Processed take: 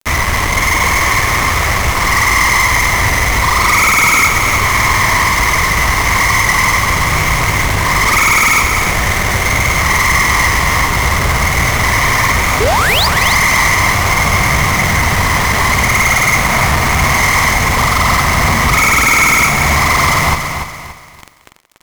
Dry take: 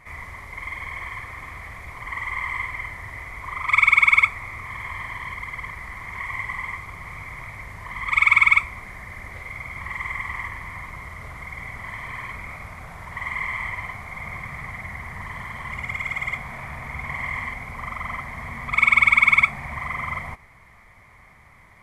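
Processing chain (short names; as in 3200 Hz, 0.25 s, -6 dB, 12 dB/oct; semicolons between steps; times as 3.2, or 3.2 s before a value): median filter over 15 samples; high shelf 2800 Hz +4.5 dB; in parallel at -1 dB: compressor, threshold -36 dBFS, peak gain reduction 19 dB; on the sum: painted sound rise, 12.6–13.07, 380–5200 Hz -32 dBFS; fuzz box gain 41 dB, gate -37 dBFS; split-band echo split 350 Hz, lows 84 ms, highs 0.178 s, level -14 dB; on a send at -20 dB: reverb RT60 0.50 s, pre-delay 3 ms; on the sum: lo-fi delay 0.287 s, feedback 35%, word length 8-bit, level -7.5 dB; gain +4 dB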